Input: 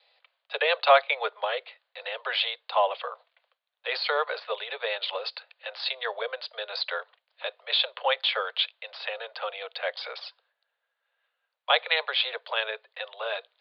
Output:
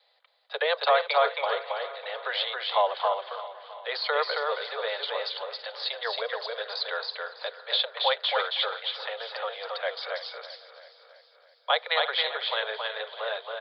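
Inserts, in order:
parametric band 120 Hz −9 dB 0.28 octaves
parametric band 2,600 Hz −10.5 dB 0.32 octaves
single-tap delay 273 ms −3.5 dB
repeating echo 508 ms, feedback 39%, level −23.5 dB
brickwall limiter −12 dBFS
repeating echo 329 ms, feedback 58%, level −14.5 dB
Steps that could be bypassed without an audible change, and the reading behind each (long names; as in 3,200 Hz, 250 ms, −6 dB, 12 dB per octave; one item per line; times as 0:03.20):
parametric band 120 Hz: nothing at its input below 380 Hz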